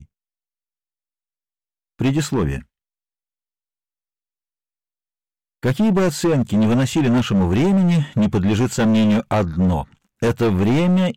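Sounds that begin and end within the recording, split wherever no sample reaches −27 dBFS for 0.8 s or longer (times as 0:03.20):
0:02.01–0:02.59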